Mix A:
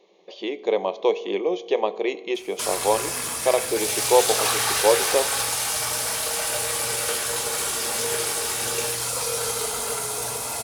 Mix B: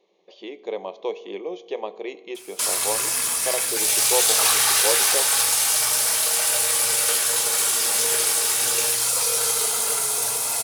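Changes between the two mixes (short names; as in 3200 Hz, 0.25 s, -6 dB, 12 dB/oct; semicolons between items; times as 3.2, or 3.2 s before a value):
speech -7.5 dB; background: add tilt +2 dB/oct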